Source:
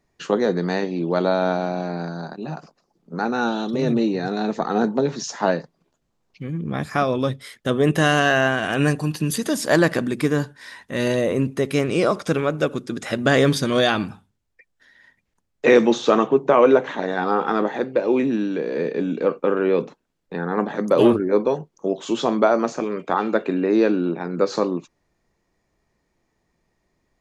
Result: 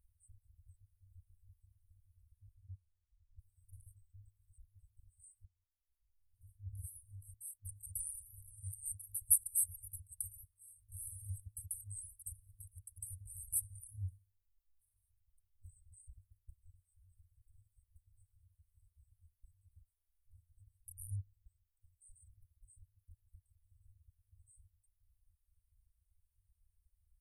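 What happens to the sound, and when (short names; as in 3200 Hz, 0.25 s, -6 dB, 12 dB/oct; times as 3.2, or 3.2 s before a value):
2.32 tape stop 1.07 s
5.45–6.79 fade in linear, from -13 dB
whole clip: FFT band-reject 100–8000 Hz; reverb removal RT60 1.1 s; band shelf 5500 Hz -10 dB 1.2 oct; gain +4 dB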